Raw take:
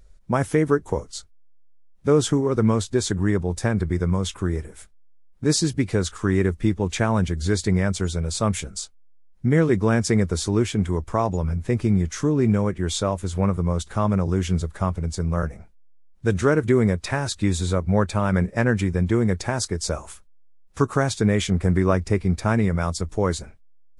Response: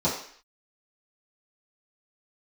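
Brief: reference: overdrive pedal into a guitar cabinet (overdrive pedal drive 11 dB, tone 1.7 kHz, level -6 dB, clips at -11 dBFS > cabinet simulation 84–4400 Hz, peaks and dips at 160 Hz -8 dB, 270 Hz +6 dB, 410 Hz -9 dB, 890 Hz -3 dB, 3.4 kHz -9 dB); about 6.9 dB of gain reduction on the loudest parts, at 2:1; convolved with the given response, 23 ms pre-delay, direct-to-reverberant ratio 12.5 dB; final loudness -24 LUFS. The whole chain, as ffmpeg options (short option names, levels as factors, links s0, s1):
-filter_complex "[0:a]acompressor=threshold=0.0447:ratio=2,asplit=2[s0][s1];[1:a]atrim=start_sample=2205,adelay=23[s2];[s1][s2]afir=irnorm=-1:irlink=0,volume=0.0562[s3];[s0][s3]amix=inputs=2:normalize=0,asplit=2[s4][s5];[s5]highpass=f=720:p=1,volume=3.55,asoftclip=type=tanh:threshold=0.282[s6];[s4][s6]amix=inputs=2:normalize=0,lowpass=f=1700:p=1,volume=0.501,highpass=84,equalizer=f=160:t=q:w=4:g=-8,equalizer=f=270:t=q:w=4:g=6,equalizer=f=410:t=q:w=4:g=-9,equalizer=f=890:t=q:w=4:g=-3,equalizer=f=3400:t=q:w=4:g=-9,lowpass=f=4400:w=0.5412,lowpass=f=4400:w=1.3066,volume=2.24"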